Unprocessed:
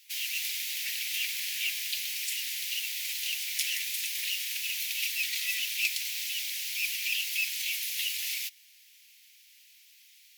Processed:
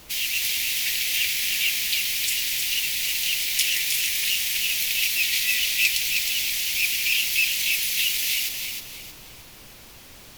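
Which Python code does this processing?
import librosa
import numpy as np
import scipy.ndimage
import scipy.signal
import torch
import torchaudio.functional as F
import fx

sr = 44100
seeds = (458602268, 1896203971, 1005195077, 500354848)

p1 = fx.dmg_noise_colour(x, sr, seeds[0], colour='pink', level_db=-57.0)
p2 = p1 + fx.echo_feedback(p1, sr, ms=314, feedback_pct=35, wet_db=-5.5, dry=0)
y = p2 * librosa.db_to_amplitude(7.5)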